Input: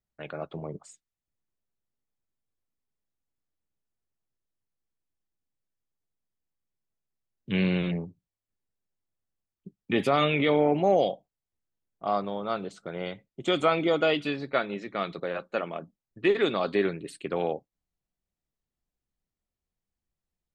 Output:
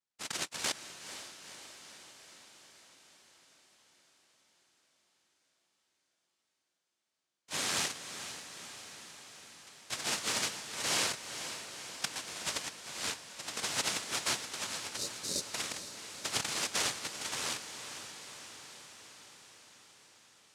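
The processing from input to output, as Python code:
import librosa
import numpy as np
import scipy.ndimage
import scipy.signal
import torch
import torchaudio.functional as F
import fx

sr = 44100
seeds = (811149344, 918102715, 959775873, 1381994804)

p1 = fx.filter_lfo_bandpass(x, sr, shape='saw_down', hz=1.4, low_hz=550.0, high_hz=3900.0, q=2.8)
p2 = fx.over_compress(p1, sr, threshold_db=-39.0, ratio=-0.5)
p3 = fx.noise_vocoder(p2, sr, seeds[0], bands=1)
p4 = fx.spec_erase(p3, sr, start_s=14.97, length_s=0.49, low_hz=640.0, high_hz=3600.0)
p5 = p4 + fx.echo_diffused(p4, sr, ms=480, feedback_pct=67, wet_db=-10.0, dry=0)
y = F.gain(torch.from_numpy(p5), 5.0).numpy()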